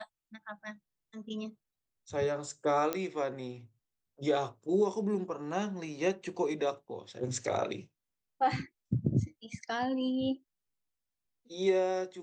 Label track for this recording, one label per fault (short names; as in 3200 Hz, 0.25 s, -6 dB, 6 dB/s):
2.930000	2.930000	pop -16 dBFS